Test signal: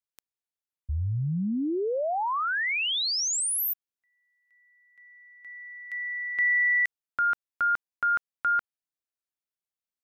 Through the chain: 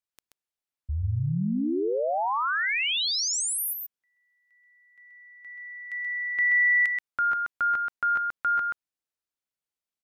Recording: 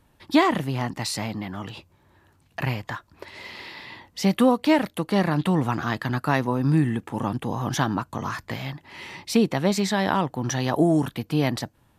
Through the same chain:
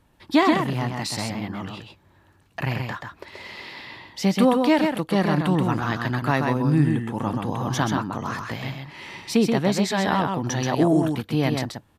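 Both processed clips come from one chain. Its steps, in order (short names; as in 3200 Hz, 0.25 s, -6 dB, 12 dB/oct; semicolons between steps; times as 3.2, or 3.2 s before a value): high shelf 9800 Hz -4.5 dB; echo 0.13 s -4.5 dB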